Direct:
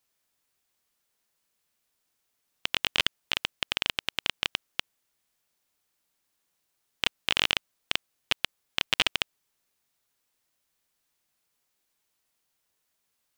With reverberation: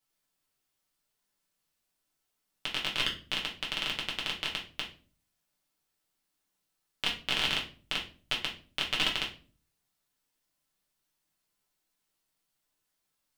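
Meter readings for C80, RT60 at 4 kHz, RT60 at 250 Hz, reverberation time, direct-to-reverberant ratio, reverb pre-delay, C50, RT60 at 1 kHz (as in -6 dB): 15.0 dB, 0.30 s, 0.60 s, 0.40 s, -3.0 dB, 5 ms, 9.0 dB, 0.35 s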